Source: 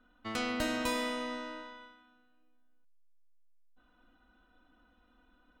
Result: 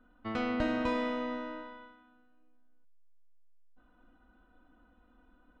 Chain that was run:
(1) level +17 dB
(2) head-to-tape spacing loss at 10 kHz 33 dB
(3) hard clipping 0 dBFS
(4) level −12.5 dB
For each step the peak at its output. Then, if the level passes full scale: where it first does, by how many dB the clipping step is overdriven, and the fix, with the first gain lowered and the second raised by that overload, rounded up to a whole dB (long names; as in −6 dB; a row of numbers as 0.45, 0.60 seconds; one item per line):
−1.5, −5.5, −5.5, −18.0 dBFS
no step passes full scale